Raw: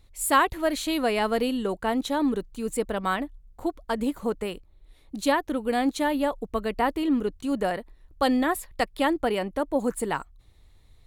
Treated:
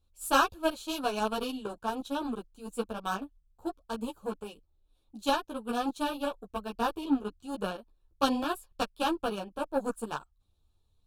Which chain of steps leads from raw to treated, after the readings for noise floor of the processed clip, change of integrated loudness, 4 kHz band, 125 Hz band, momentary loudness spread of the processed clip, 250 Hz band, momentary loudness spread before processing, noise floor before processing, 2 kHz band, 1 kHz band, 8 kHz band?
-71 dBFS, -6.0 dB, -3.0 dB, no reading, 11 LU, -7.5 dB, 8 LU, -56 dBFS, -7.0 dB, -4.5 dB, -8.0 dB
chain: Chebyshev shaper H 3 -15 dB, 7 -27 dB, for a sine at -8.5 dBFS; Butterworth band-stop 2 kHz, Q 2.3; three-phase chorus; trim +4.5 dB

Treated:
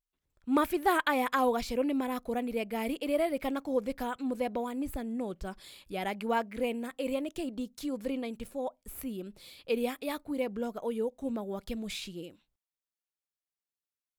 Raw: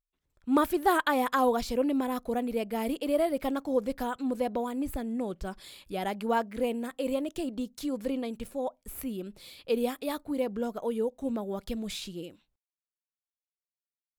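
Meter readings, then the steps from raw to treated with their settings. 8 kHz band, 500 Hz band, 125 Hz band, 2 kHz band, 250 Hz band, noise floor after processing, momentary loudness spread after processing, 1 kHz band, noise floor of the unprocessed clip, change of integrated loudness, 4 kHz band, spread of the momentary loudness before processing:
-2.5 dB, -2.5 dB, -2.5 dB, 0.0 dB, -2.5 dB, under -85 dBFS, 12 LU, -2.0 dB, under -85 dBFS, -2.0 dB, -1.0 dB, 11 LU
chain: dynamic bell 2.3 kHz, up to +7 dB, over -52 dBFS, Q 2.4; trim -2.5 dB

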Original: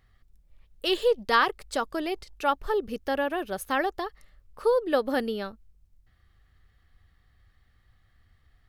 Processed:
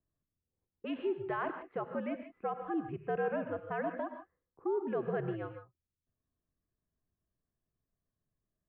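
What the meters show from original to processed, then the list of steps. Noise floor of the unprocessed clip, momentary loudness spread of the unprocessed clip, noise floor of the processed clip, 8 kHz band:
-65 dBFS, 10 LU, under -85 dBFS, under -30 dB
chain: level-controlled noise filter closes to 410 Hz, open at -23 dBFS; dynamic bell 670 Hz, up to +7 dB, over -38 dBFS, Q 1.5; peak limiter -17.5 dBFS, peak gain reduction 10 dB; gated-style reverb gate 180 ms rising, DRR 7.5 dB; mistuned SSB -92 Hz 150–2500 Hz; trim -9 dB

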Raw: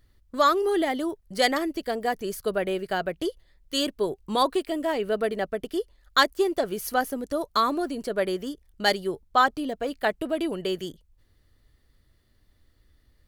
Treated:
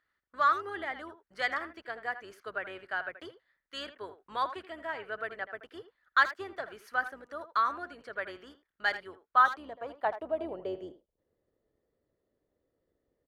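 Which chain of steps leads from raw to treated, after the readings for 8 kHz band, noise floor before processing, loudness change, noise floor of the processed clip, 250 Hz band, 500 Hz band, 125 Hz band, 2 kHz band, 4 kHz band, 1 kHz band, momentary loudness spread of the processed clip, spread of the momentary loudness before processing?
under -20 dB, -64 dBFS, -6.5 dB, -84 dBFS, -18.5 dB, -13.5 dB, under -15 dB, -2.0 dB, -13.5 dB, -4.5 dB, 17 LU, 9 LU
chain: octave divider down 2 oct, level 0 dB; band-pass sweep 1.5 kHz -> 490 Hz, 9.21–11.16 s; speakerphone echo 80 ms, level -12 dB

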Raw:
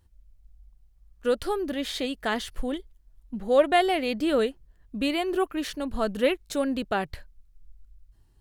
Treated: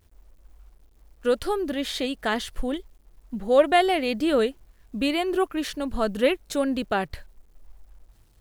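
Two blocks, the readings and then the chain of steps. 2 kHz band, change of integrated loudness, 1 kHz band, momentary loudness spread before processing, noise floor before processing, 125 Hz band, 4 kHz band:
+2.0 dB, +2.0 dB, +2.0 dB, 11 LU, -61 dBFS, no reading, +2.0 dB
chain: bit crusher 11-bit; trim +2 dB

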